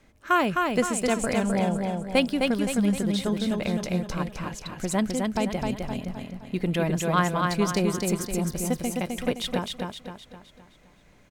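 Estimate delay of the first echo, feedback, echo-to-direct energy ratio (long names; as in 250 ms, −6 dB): 259 ms, 45%, −2.5 dB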